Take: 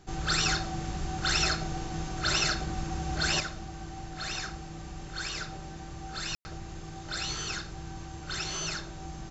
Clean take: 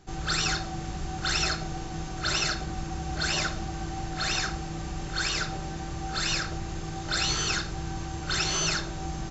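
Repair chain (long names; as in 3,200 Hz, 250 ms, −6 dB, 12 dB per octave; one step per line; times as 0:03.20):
ambience match 0:06.35–0:06.45
level correction +7 dB, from 0:03.40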